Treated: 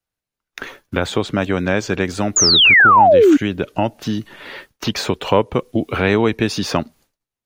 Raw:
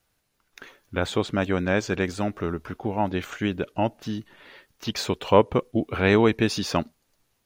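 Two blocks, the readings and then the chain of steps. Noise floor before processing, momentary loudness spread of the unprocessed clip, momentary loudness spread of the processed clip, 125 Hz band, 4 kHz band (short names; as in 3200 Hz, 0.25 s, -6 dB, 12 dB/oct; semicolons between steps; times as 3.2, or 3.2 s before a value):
-72 dBFS, 12 LU, 18 LU, +5.0 dB, +16.5 dB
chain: expander -49 dBFS; in parallel at 0 dB: compressor, threshold -28 dBFS, peak gain reduction 16.5 dB; on the sum: painted sound fall, 2.36–3.37, 270–7200 Hz -9 dBFS; three-band squash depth 40%; gain +1.5 dB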